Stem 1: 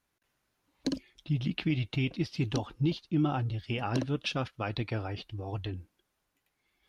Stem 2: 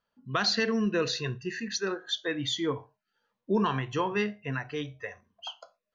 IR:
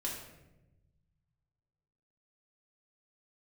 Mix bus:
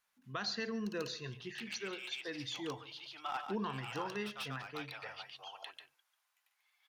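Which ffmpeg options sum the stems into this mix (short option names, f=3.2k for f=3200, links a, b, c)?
-filter_complex "[0:a]highpass=f=840:w=0.5412,highpass=f=840:w=1.3066,volume=31.5dB,asoftclip=hard,volume=-31.5dB,volume=0dB,asplit=2[a][b];[b]volume=-7dB[c];[1:a]volume=-12.5dB,asplit=4[d][e][f][g];[e]volume=-19.5dB[h];[f]volume=-18.5dB[i];[g]apad=whole_len=303672[j];[a][j]sidechaincompress=threshold=-51dB:ratio=4:attack=6.3:release=460[k];[2:a]atrim=start_sample=2205[l];[h][l]afir=irnorm=-1:irlink=0[m];[c][i]amix=inputs=2:normalize=0,aecho=0:1:142:1[n];[k][d][m][n]amix=inputs=4:normalize=0"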